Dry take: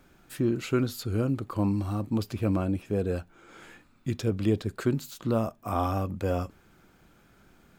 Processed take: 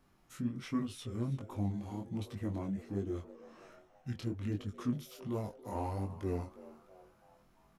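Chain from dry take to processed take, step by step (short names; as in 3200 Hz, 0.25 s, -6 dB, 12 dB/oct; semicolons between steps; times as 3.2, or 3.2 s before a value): formant shift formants -4 st; chorus 1.3 Hz, delay 19.5 ms, depth 6.1 ms; on a send: frequency-shifting echo 0.328 s, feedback 48%, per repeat +140 Hz, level -18 dB; on the sum: gain -6.5 dB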